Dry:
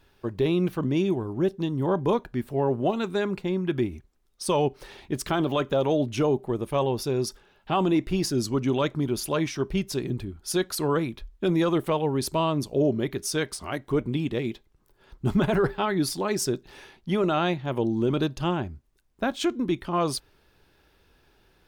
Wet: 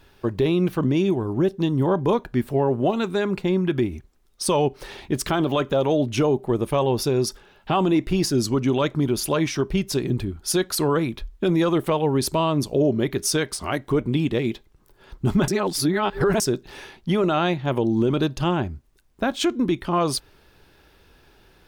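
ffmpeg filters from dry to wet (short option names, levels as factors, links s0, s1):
-filter_complex "[0:a]asplit=3[s0][s1][s2];[s0]atrim=end=15.482[s3];[s1]atrim=start=15.478:end=16.402,asetpts=PTS-STARTPTS,areverse[s4];[s2]atrim=start=16.398[s5];[s3][s4]acrossfade=d=0.004:c1=hsin:c2=hsin[s6];[s6][s5]acrossfade=d=0.004:c1=hsin:c2=hsin,alimiter=limit=0.112:level=0:latency=1:release=230,volume=2.24"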